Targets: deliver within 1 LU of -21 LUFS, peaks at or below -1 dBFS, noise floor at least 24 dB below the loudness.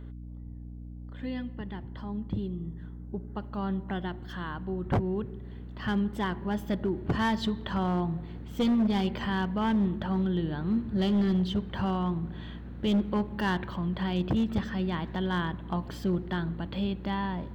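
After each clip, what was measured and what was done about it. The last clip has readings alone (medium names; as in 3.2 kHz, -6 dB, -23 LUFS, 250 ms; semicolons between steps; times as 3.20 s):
clipped samples 1.3%; clipping level -21.0 dBFS; hum 60 Hz; highest harmonic 300 Hz; hum level -40 dBFS; loudness -30.5 LUFS; peak level -21.0 dBFS; loudness target -21.0 LUFS
-> clip repair -21 dBFS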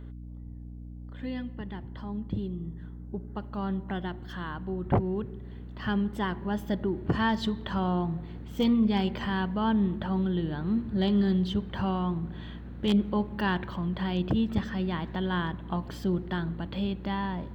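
clipped samples 0.0%; hum 60 Hz; highest harmonic 300 Hz; hum level -40 dBFS
-> de-hum 60 Hz, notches 5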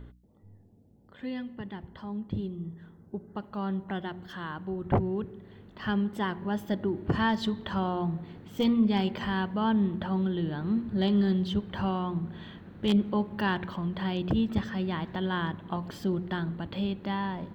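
hum not found; loudness -30.5 LUFS; peak level -12.0 dBFS; loudness target -21.0 LUFS
-> trim +9.5 dB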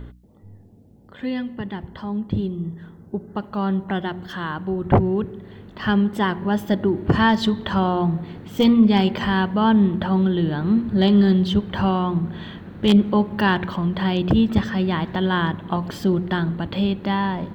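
loudness -21.0 LUFS; peak level -2.5 dBFS; noise floor -47 dBFS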